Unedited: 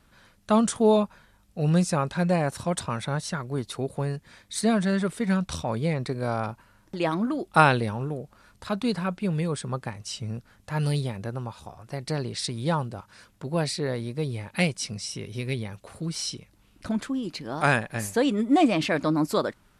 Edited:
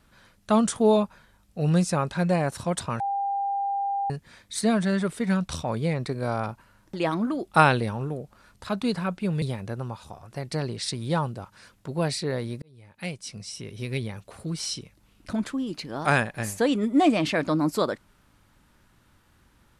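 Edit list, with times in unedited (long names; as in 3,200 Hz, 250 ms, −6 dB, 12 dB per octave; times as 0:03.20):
0:03.00–0:04.10: beep over 797 Hz −24 dBFS
0:09.42–0:10.98: remove
0:14.18–0:15.54: fade in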